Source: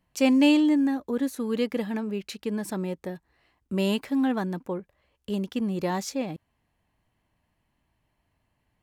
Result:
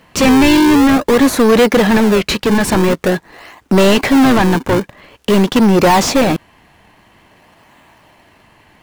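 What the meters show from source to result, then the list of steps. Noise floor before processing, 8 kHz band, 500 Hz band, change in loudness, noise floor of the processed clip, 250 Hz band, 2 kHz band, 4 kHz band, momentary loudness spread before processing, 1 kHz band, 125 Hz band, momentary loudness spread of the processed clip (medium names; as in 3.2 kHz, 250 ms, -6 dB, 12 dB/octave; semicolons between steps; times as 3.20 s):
-76 dBFS, +19.0 dB, +17.5 dB, +15.0 dB, -51 dBFS, +13.5 dB, +19.0 dB, +16.5 dB, 16 LU, +20.5 dB, +17.0 dB, 8 LU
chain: overdrive pedal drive 32 dB, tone 3.7 kHz, clips at -10 dBFS; in parallel at -5 dB: decimation with a swept rate 38×, swing 160% 0.48 Hz; on the sum: trim +5 dB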